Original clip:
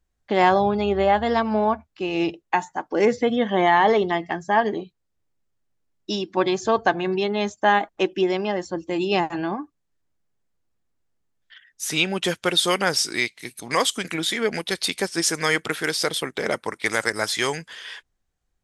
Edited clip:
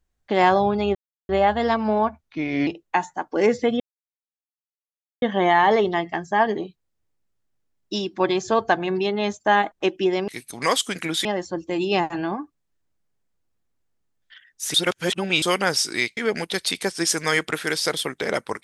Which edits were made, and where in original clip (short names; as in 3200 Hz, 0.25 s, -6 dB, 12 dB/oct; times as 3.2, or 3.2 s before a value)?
0.95 insert silence 0.34 s
1.89–2.26 speed 84%
3.39 insert silence 1.42 s
11.94–12.62 reverse
13.37–14.34 move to 8.45